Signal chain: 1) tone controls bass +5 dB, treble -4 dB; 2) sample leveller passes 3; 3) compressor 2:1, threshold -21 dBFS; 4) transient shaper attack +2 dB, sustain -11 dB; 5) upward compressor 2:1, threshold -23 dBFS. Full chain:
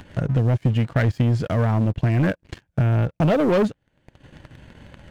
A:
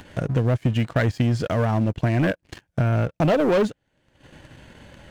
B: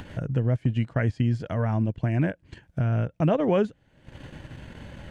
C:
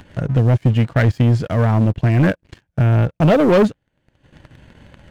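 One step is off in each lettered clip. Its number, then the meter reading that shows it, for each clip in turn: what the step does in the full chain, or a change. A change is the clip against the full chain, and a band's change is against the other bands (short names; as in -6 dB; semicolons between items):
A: 1, loudness change -1.5 LU; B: 2, crest factor change +5.5 dB; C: 3, mean gain reduction 4.0 dB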